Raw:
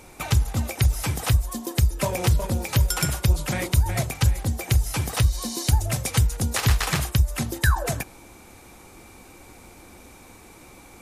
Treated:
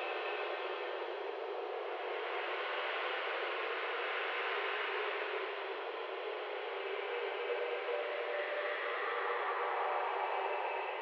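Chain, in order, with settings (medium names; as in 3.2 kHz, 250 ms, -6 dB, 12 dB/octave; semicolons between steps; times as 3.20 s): saturation -26.5 dBFS, distortion -5 dB; mistuned SSB +250 Hz 170–2900 Hz; on a send: echo whose repeats swap between lows and highs 333 ms, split 820 Hz, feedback 56%, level -3 dB; on the sum: Paulstretch 5.7×, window 0.50 s, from 6.09 s; trim -3 dB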